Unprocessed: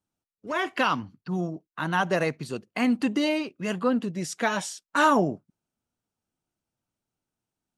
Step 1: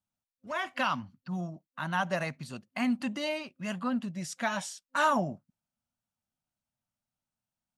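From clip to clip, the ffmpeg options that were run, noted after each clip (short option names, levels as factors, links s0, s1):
-af "superequalizer=6b=0.355:7b=0.251,volume=0.562"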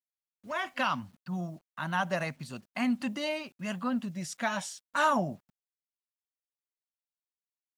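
-af "acrusher=bits=10:mix=0:aa=0.000001"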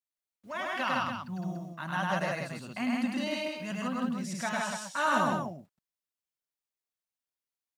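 -af "aecho=1:1:102|160.3|288.6:0.891|0.794|0.447,volume=0.668"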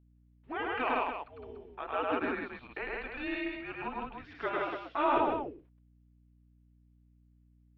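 -af "highpass=f=440:t=q:w=0.5412,highpass=f=440:t=q:w=1.307,lowpass=f=3400:t=q:w=0.5176,lowpass=f=3400:t=q:w=0.7071,lowpass=f=3400:t=q:w=1.932,afreqshift=-280,aeval=exprs='val(0)+0.000794*(sin(2*PI*60*n/s)+sin(2*PI*2*60*n/s)/2+sin(2*PI*3*60*n/s)/3+sin(2*PI*4*60*n/s)/4+sin(2*PI*5*60*n/s)/5)':c=same"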